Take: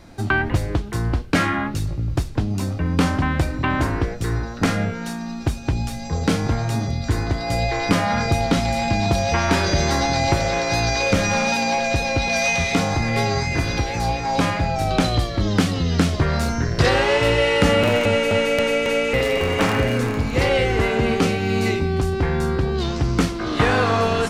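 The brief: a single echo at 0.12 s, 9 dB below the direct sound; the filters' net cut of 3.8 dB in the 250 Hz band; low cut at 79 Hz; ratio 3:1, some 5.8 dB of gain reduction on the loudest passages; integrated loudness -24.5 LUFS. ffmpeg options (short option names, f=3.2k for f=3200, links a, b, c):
-af "highpass=79,equalizer=f=250:t=o:g=-5,acompressor=threshold=-23dB:ratio=3,aecho=1:1:120:0.355,volume=1dB"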